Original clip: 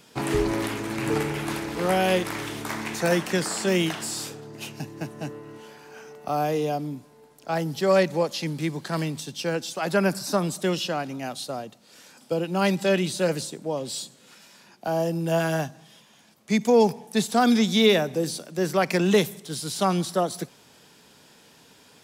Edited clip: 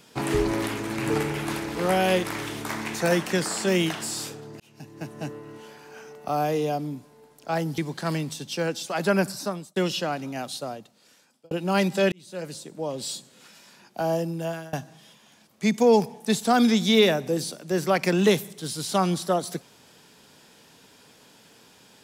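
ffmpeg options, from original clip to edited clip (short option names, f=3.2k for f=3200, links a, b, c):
-filter_complex "[0:a]asplit=7[a][b][c][d][e][f][g];[a]atrim=end=4.6,asetpts=PTS-STARTPTS,afade=t=out:st=4.596:d=0.004:c=hsin[h];[b]atrim=start=4.6:end=7.782,asetpts=PTS-STARTPTS,afade=t=in:d=0.6[i];[c]atrim=start=8.648:end=10.63,asetpts=PTS-STARTPTS,afade=t=out:st=1.452:d=0.53[j];[d]atrim=start=10.63:end=12.38,asetpts=PTS-STARTPTS,afade=t=in:d=0.004:c=hsin,afade=t=out:st=0.8:d=0.95[k];[e]atrim=start=12.38:end=12.99,asetpts=PTS-STARTPTS,afade=t=in:d=0.004:c=hsin,afade=t=out:st=0.606:d=0.004:c=hsin[l];[f]atrim=start=12.99:end=15.6,asetpts=PTS-STARTPTS,afade=t=in:d=0.92,afade=t=out:st=2.01:d=0.6:silence=0.0630957[m];[g]atrim=start=15.6,asetpts=PTS-STARTPTS,afade=t=in:d=0.004:c=hsin:silence=0.0630957[n];[h][i]concat=n=2:v=0:a=1[o];[j][k][l][m][n]concat=n=5:v=0:a=1[p];[o][p]acrossfade=d=0.004:c1=hsin:c2=hsin"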